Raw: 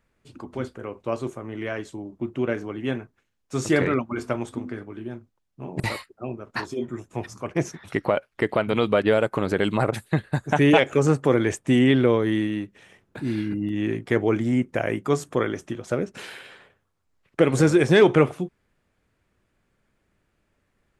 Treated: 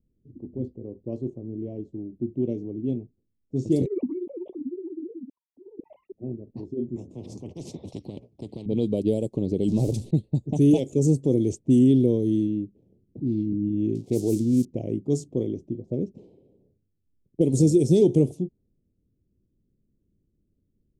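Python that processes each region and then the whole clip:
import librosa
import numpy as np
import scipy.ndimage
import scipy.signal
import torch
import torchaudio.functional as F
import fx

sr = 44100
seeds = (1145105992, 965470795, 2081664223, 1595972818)

y = fx.chain(x, sr, fx.sine_speech(),
    fx.tremolo(hz=16.0, depth=0.93),
    fx.sustainer(db_per_s=21.0), at=(3.86, 6.12))
y = fx.chain(y, sr, fx.highpass(hz=84.0, slope=24),
    fx.spectral_comp(ratio=10.0), at=(6.96, 8.66))
y = fx.chain(y, sr, fx.zero_step(step_db=-26.0),
    fx.high_shelf(hz=7600.0, db=-7.0), at=(9.68, 10.11))
y = fx.chain(y, sr, fx.crossing_spikes(level_db=-20.0),
    fx.highpass(hz=42.0, slope=6),
    fx.doppler_dist(depth_ms=0.14), at=(13.95, 14.65))
y = fx.env_lowpass(y, sr, base_hz=450.0, full_db=-15.5)
y = scipy.signal.sosfilt(scipy.signal.cheby1(2, 1.0, [310.0, 6700.0], 'bandstop', fs=sr, output='sos'), y)
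y = y * 10.0 ** (1.5 / 20.0)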